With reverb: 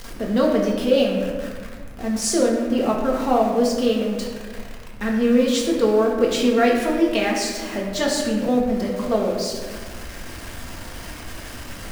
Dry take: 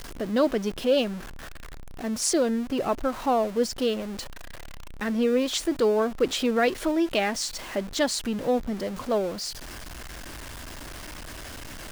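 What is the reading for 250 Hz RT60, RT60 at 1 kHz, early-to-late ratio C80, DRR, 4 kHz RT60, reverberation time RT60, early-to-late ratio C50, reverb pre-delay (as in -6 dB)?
2.0 s, 1.2 s, 4.5 dB, -2.5 dB, 0.90 s, 1.5 s, 3.0 dB, 4 ms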